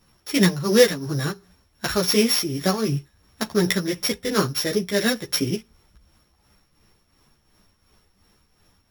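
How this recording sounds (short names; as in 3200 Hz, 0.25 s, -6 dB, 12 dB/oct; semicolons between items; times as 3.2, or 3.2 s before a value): a buzz of ramps at a fixed pitch in blocks of 8 samples; tremolo triangle 2.8 Hz, depth 65%; a shimmering, thickened sound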